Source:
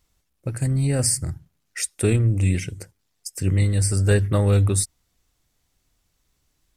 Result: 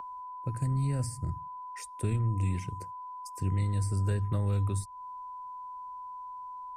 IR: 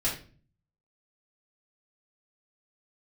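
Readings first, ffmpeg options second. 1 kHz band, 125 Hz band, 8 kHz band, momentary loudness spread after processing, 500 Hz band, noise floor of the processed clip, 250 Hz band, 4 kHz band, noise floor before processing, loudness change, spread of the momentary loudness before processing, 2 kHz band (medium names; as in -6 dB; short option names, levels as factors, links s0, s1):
+4.5 dB, -9.0 dB, -19.5 dB, 13 LU, -15.5 dB, -44 dBFS, -11.0 dB, under -15 dB, -72 dBFS, -12.0 dB, 16 LU, -16.0 dB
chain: -filter_complex "[0:a]aeval=exprs='val(0)+0.0398*sin(2*PI*1000*n/s)':c=same,acrossover=split=210|530[s0][s1][s2];[s0]acompressor=threshold=0.0794:ratio=4[s3];[s1]acompressor=threshold=0.0126:ratio=4[s4];[s2]acompressor=threshold=0.0112:ratio=4[s5];[s3][s4][s5]amix=inputs=3:normalize=0,volume=0.562"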